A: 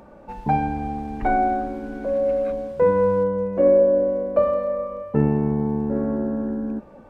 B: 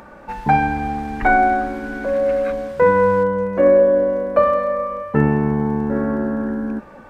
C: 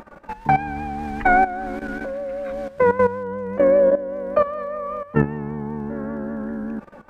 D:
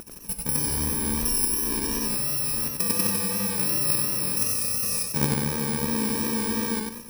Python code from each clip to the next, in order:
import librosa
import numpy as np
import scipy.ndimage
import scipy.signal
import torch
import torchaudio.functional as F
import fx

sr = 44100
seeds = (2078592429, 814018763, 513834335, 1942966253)

y1 = fx.curve_eq(x, sr, hz=(620.0, 1700.0, 2600.0), db=(0, 12, 7))
y1 = F.gain(torch.from_numpy(y1), 3.0).numpy()
y2 = fx.level_steps(y1, sr, step_db=14)
y2 = fx.vibrato(y2, sr, rate_hz=5.1, depth_cents=49.0)
y3 = fx.bit_reversed(y2, sr, seeds[0], block=64)
y3 = fx.over_compress(y3, sr, threshold_db=-18.0, ratio=-0.5)
y3 = fx.echo_warbled(y3, sr, ms=93, feedback_pct=37, rate_hz=2.8, cents=101, wet_db=-3)
y3 = F.gain(torch.from_numpy(y3), -2.5).numpy()